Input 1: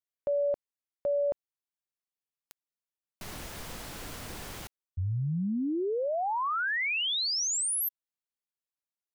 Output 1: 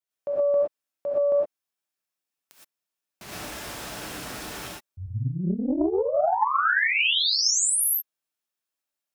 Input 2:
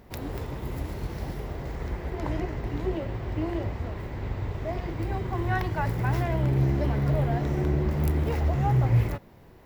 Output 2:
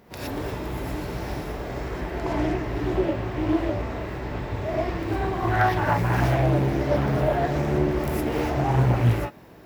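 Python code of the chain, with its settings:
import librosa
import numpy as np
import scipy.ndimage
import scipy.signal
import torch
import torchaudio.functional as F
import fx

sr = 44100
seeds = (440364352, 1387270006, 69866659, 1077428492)

y = fx.highpass(x, sr, hz=180.0, slope=6)
y = fx.rev_gated(y, sr, seeds[0], gate_ms=140, shape='rising', drr_db=-6.5)
y = fx.doppler_dist(y, sr, depth_ms=0.57)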